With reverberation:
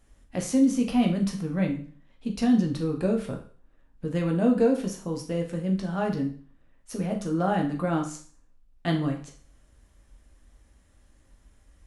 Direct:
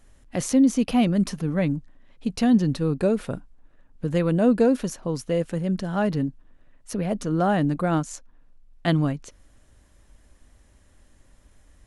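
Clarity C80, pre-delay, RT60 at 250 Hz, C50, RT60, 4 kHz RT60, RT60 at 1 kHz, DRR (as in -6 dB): 13.5 dB, 10 ms, 0.45 s, 9.0 dB, 0.45 s, 0.45 s, 0.45 s, 1.5 dB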